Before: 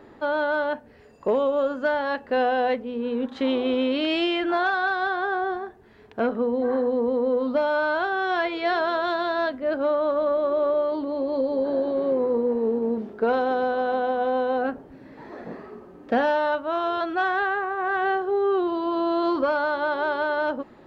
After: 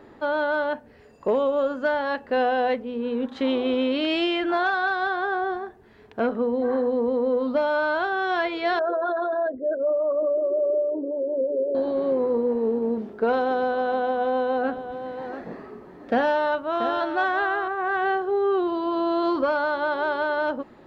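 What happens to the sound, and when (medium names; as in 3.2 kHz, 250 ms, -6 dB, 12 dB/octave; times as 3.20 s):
8.79–11.75 s: resonances exaggerated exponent 3
13.95–17.68 s: delay 683 ms -10 dB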